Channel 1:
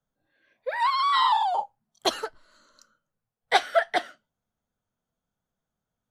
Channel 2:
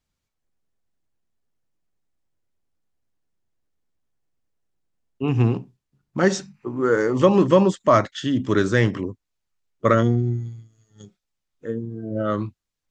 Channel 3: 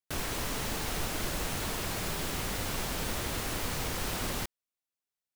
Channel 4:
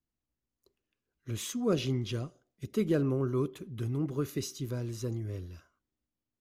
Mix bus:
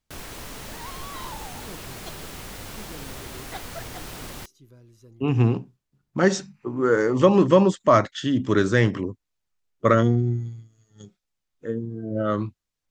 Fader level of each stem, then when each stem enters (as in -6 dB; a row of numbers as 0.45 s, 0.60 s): -18.0 dB, -0.5 dB, -4.0 dB, -16.0 dB; 0.00 s, 0.00 s, 0.00 s, 0.00 s